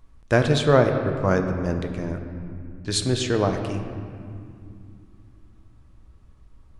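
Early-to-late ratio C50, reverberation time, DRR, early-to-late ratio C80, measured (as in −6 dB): 6.5 dB, 2.4 s, 5.0 dB, 7.5 dB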